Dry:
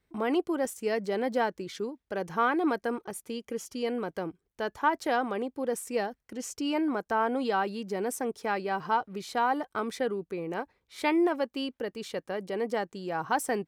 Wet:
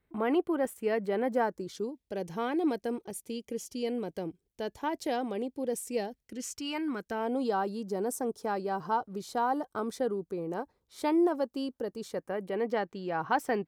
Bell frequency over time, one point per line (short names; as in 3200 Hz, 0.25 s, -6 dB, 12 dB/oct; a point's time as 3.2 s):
bell -13.5 dB 1.2 oct
1.11 s 5900 Hz
2.02 s 1300 Hz
6.22 s 1300 Hz
6.68 s 390 Hz
7.49 s 2300 Hz
12.01 s 2300 Hz
12.75 s 9400 Hz